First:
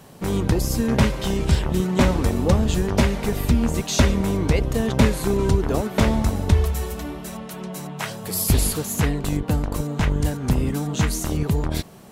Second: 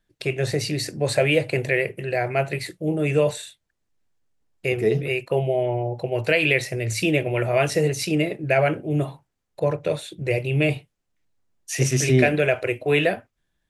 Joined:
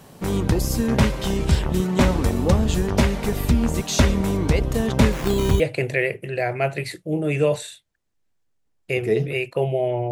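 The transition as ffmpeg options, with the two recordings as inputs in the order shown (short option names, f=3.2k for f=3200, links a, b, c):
-filter_complex "[0:a]asettb=1/sr,asplit=3[a][b][c];[a]atrim=end=5.124[d];[b]atrim=start=5.12:end=5.6,asetpts=PTS-STARTPTS,afade=t=in:d=0.004:c=qsin,afade=t=out:st=0.476:d=0.004:c=qsin,acrusher=samples=9:mix=1:aa=0.000001:lfo=1:lforange=9:lforate=0.54[e];[c]atrim=start=5.596[f];[d][e]acrossfade=d=0.004:c1=hsin:c2=qsin[g];[g][f]acrossfade=d=0.004:c1=qsin:c2=hsin,apad=whole_dur=10.11,atrim=end=10.11,atrim=end=5.602[h];[1:a]atrim=start=1.348:end=5.86[i];[h][i]acrossfade=d=0.004:c1=hsin:c2=hsin"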